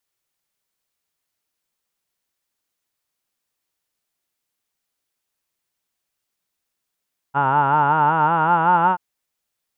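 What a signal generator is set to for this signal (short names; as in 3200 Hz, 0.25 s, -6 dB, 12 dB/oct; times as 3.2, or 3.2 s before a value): formant vowel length 1.63 s, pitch 135 Hz, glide +5 st, F1 890 Hz, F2 1400 Hz, F3 2800 Hz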